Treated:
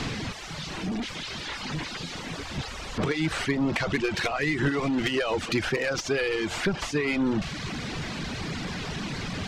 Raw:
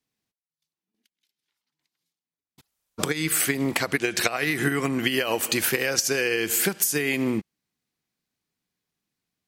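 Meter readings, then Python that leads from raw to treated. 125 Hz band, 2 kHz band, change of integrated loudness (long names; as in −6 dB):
+3.5 dB, −2.5 dB, −5.0 dB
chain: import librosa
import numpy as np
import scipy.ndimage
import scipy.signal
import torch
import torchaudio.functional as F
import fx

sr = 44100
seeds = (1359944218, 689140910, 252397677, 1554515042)

y = fx.delta_mod(x, sr, bps=64000, step_db=-25.0)
y = fx.air_absorb(y, sr, metres=160.0)
y = 10.0 ** (-22.0 / 20.0) * np.tanh(y / 10.0 ** (-22.0 / 20.0))
y = fx.dereverb_blind(y, sr, rt60_s=0.88)
y = fx.low_shelf(y, sr, hz=150.0, db=7.5)
y = y * 10.0 ** (3.0 / 20.0)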